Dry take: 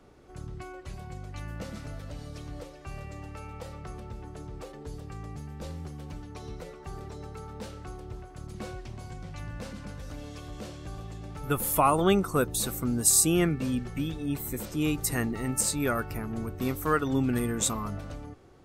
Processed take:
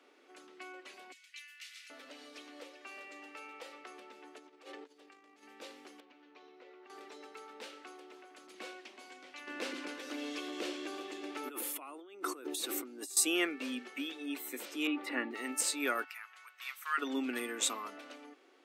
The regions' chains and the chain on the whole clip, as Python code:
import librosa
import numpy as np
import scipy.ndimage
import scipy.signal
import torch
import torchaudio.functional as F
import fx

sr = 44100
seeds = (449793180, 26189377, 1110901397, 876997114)

y = fx.chain(x, sr, fx.cheby2_highpass(hz=570.0, order=4, stop_db=60),
    fx.high_shelf(hz=5700.0, db=4.0), at=(1.12, 1.9))
y = fx.chain(y, sr, fx.high_shelf(hz=9700.0, db=-7.0),
    fx.hum_notches(base_hz=50, count=5),
    fx.over_compress(threshold_db=-45.0, ratio=-0.5), at=(4.38, 5.43))
y = fx.chain(y, sr, fx.air_absorb(metres=180.0),
    fx.comb_fb(f0_hz=92.0, decay_s=1.6, harmonics='all', damping=0.0, mix_pct=70),
    fx.env_flatten(amount_pct=50), at=(6.0, 6.9))
y = fx.chain(y, sr, fx.peak_eq(hz=340.0, db=10.5, octaves=0.51),
    fx.over_compress(threshold_db=-34.0, ratio=-1.0), at=(9.47, 13.17))
y = fx.chain(y, sr, fx.air_absorb(metres=470.0),
    fx.comb(ms=3.5, depth=0.64),
    fx.env_flatten(amount_pct=50), at=(14.87, 15.31))
y = fx.chain(y, sr, fx.highpass(hz=1200.0, slope=24),
    fx.high_shelf(hz=4000.0, db=-5.5), at=(16.04, 16.98))
y = scipy.signal.sosfilt(scipy.signal.cheby1(5, 1.0, 260.0, 'highpass', fs=sr, output='sos'), y)
y = fx.peak_eq(y, sr, hz=2600.0, db=11.5, octaves=1.8)
y = y * 10.0 ** (-8.0 / 20.0)